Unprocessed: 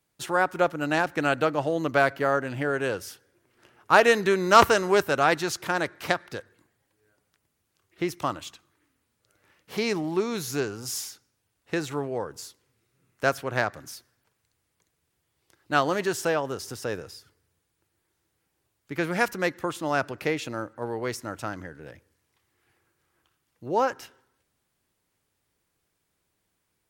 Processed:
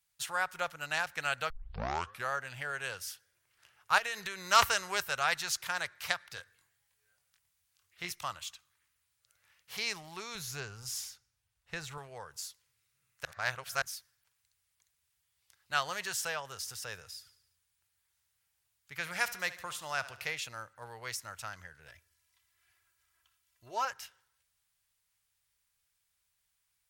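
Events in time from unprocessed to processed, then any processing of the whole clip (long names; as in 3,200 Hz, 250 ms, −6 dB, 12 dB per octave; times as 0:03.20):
0:01.50: tape start 0.81 s
0:03.98–0:04.45: downward compressor 10 to 1, threshold −23 dBFS
0:06.35–0:08.12: double-tracking delay 23 ms −4.5 dB
0:10.35–0:11.98: spectral tilt −2 dB per octave
0:13.25–0:13.82: reverse
0:17.11–0:20.35: repeating echo 73 ms, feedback 54%, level −16 dB
0:21.88–0:23.85: comb filter 3 ms, depth 68%
whole clip: guitar amp tone stack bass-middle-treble 10-0-10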